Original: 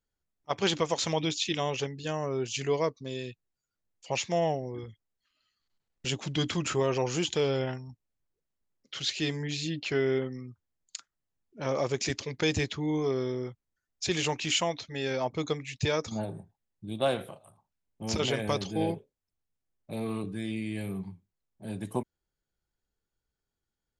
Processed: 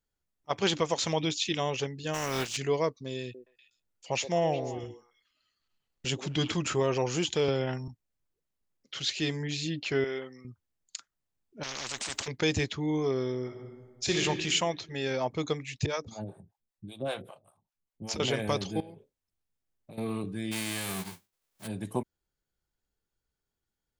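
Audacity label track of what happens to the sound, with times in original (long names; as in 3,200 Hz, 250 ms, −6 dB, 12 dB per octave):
2.130000	2.560000	compressing power law on the bin magnitudes exponent 0.4
3.220000	6.520000	echo through a band-pass that steps 122 ms, band-pass from 390 Hz, each repeat 1.4 octaves, level −6 dB
7.480000	7.880000	multiband upward and downward compressor depth 100%
10.040000	10.450000	high-pass filter 840 Hz 6 dB per octave
11.630000	12.280000	every bin compressed towards the loudest bin 10 to 1
13.430000	14.200000	thrown reverb, RT60 1.5 s, DRR 0.5 dB
15.860000	18.200000	two-band tremolo in antiphase 5.1 Hz, depth 100%, crossover 490 Hz
18.800000	19.980000	downward compressor 10 to 1, threshold −43 dBFS
20.510000	21.660000	spectral envelope flattened exponent 0.3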